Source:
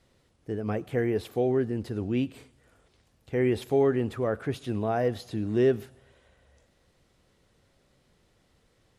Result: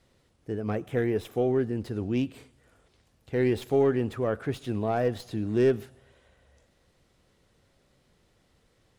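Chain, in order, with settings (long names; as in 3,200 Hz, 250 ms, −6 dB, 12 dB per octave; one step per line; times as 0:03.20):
stylus tracing distortion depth 0.053 ms
0:00.75–0:01.50: notch filter 4,400 Hz, Q 5.9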